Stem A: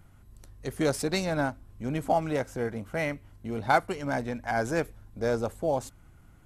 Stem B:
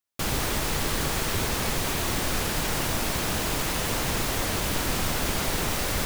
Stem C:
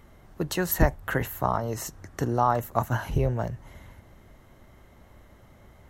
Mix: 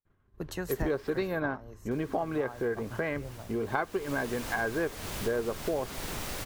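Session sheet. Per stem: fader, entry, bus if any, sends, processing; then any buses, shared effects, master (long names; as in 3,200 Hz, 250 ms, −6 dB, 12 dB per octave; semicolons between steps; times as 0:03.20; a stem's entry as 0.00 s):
+0.5 dB, 0.05 s, no send, low-pass filter 3,800 Hz 24 dB per octave; hollow resonant body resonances 400/1,100/1,600 Hz, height 12 dB, ringing for 25 ms
−9.0 dB, 0.50 s, muted 0:01.28–0:01.91, no send, automatic ducking −14 dB, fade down 0.95 s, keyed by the third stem
0:01.35 −2.5 dB → 0:01.73 −10.5 dB, 0.00 s, no send, expander for the loud parts 1.5 to 1, over −38 dBFS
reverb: not used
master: downward expander −42 dBFS; downward compressor 3 to 1, threshold −30 dBFS, peak gain reduction 12.5 dB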